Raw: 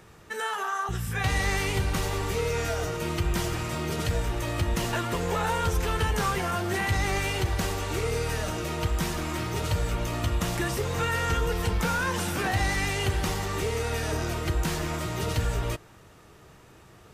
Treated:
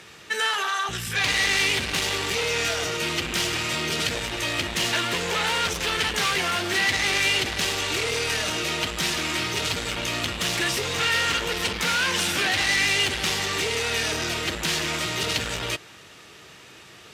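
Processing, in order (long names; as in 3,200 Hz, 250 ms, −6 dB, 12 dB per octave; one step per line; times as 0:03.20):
sine wavefolder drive 7 dB, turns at −16 dBFS
meter weighting curve D
level −7.5 dB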